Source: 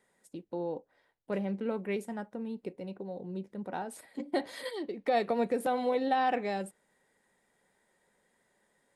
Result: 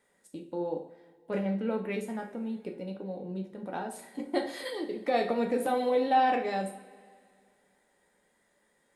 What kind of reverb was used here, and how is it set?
two-slope reverb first 0.43 s, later 2.3 s, from -19 dB, DRR 2 dB

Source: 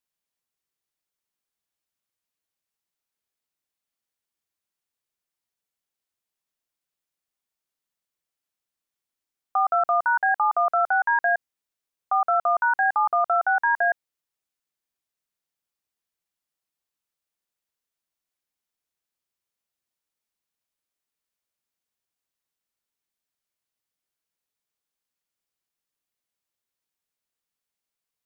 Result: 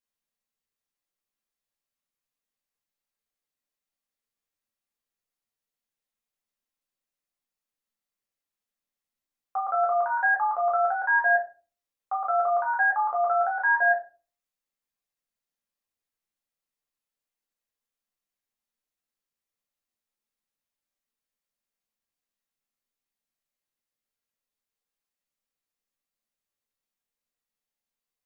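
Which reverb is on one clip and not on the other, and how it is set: simulated room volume 180 m³, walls furnished, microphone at 2.2 m; trim -7.5 dB

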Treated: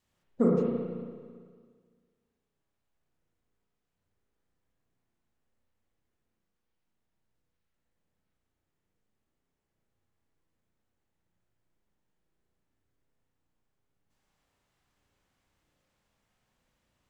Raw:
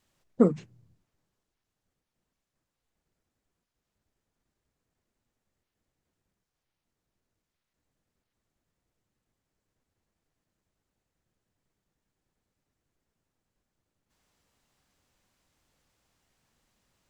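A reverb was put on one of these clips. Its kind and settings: spring tank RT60 1.8 s, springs 34/56 ms, chirp 50 ms, DRR -3.5 dB; trim -6.5 dB

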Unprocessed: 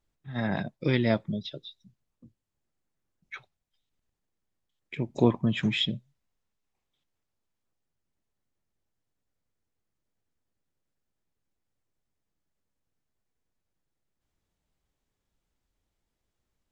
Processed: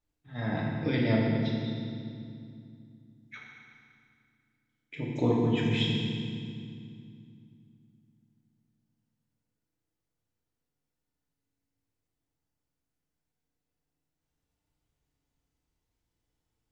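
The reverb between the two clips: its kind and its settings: FDN reverb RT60 2.3 s, low-frequency decay 1.6×, high-frequency decay 0.9×, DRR -4.5 dB; trim -7 dB

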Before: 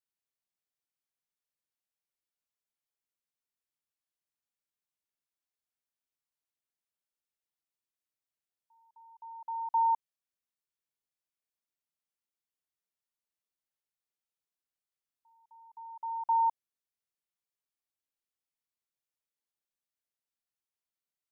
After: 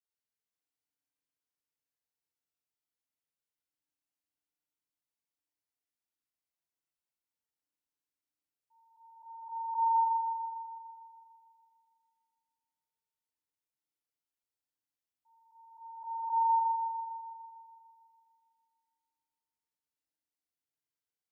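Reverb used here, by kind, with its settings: FDN reverb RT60 2.4 s, low-frequency decay 1.45×, high-frequency decay 0.8×, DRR -7.5 dB; trim -11 dB

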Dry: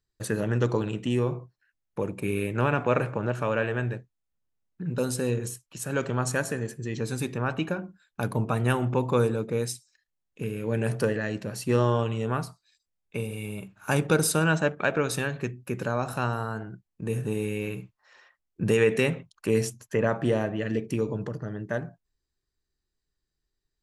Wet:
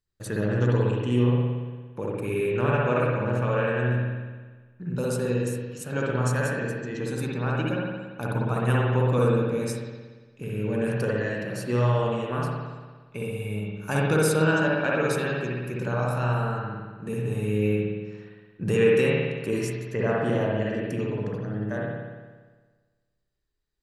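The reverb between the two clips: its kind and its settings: spring tank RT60 1.4 s, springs 57 ms, chirp 35 ms, DRR -4 dB; trim -4 dB

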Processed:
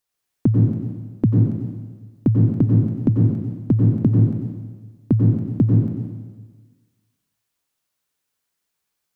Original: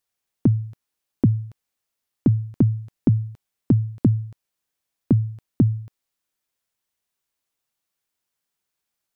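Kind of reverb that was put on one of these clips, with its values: plate-style reverb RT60 1.4 s, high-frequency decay 1×, pre-delay 80 ms, DRR -1.5 dB

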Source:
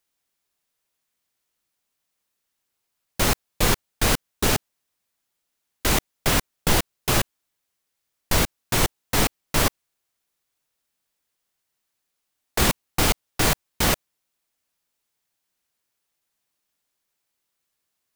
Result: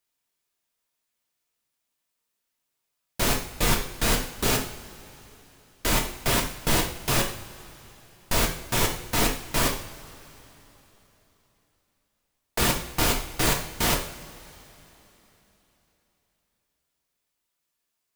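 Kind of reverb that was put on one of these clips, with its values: two-slope reverb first 0.51 s, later 3.7 s, from -20 dB, DRR 0.5 dB; trim -4.5 dB

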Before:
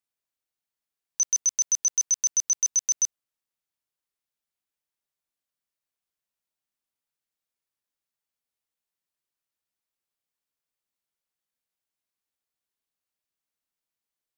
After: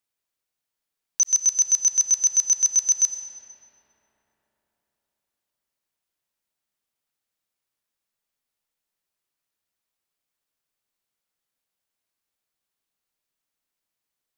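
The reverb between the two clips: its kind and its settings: algorithmic reverb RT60 4.3 s, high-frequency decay 0.5×, pre-delay 50 ms, DRR 6.5 dB; trim +4 dB

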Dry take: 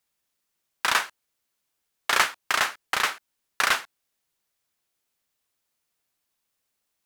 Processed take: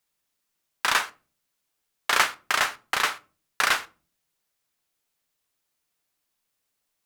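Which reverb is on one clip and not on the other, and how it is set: simulated room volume 210 m³, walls furnished, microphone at 0.39 m

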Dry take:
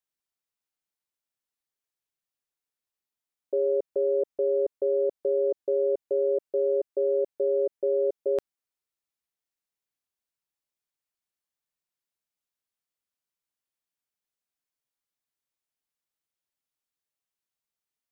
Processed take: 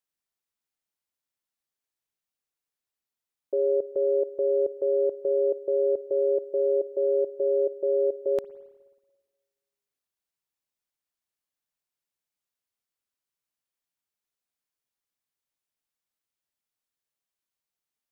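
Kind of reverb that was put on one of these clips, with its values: spring tank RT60 1.4 s, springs 54/59 ms, chirp 40 ms, DRR 18 dB

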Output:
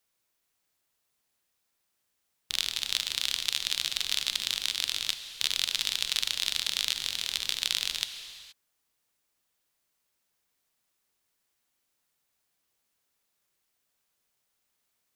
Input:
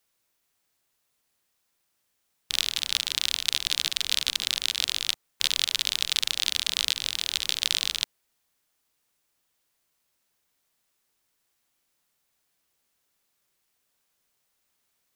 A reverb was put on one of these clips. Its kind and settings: gated-style reverb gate 500 ms flat, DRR 9.5 dB; trim -3.5 dB

